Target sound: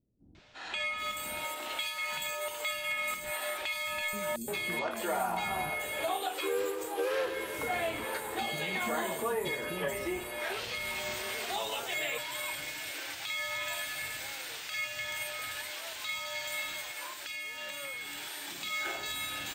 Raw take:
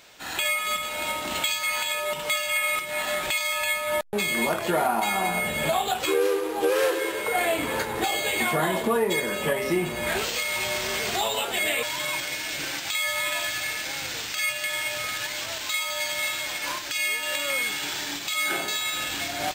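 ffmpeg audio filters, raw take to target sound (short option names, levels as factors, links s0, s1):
-filter_complex "[0:a]equalizer=f=160:t=o:w=0.21:g=-4.5,acrossover=split=280|5900[s0][s1][s2];[s1]adelay=350[s3];[s2]adelay=780[s4];[s0][s3][s4]amix=inputs=3:normalize=0,asettb=1/sr,asplit=3[s5][s6][s7];[s5]atrim=end=16.804[s8];[s6]atrim=start=16.8:end=18.48,asetpts=PTS-STARTPTS,afade=t=in:d=0.004:c=qsin,afade=t=out:st=1.676:d=0.004:c=qsin,acompressor=threshold=0.0355:ratio=6[s9];[s7]atrim=start=18.476[s10];[s8][s9]acrossfade=d=0.004:c1=hsin:c2=qsin[s11];[s11][s10]acrossfade=d=0.004:c1=qsin:c2=hsin,volume=0.398"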